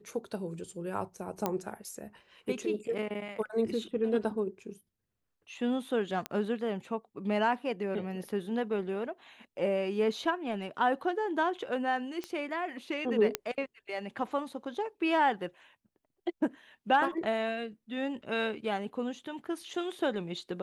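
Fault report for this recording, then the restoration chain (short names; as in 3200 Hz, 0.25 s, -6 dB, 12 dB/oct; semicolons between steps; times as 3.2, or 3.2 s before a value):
1.46 pop -15 dBFS
6.26 pop -18 dBFS
12.24 pop -23 dBFS
13.35 pop -11 dBFS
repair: de-click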